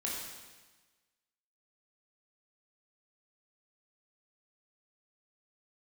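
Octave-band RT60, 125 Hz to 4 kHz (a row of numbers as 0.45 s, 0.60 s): 1.3 s, 1.3 s, 1.2 s, 1.3 s, 1.3 s, 1.3 s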